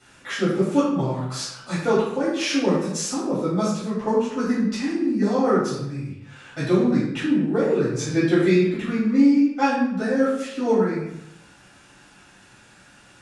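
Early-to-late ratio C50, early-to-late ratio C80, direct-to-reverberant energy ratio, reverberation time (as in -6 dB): 1.5 dB, 4.0 dB, -11.5 dB, 0.85 s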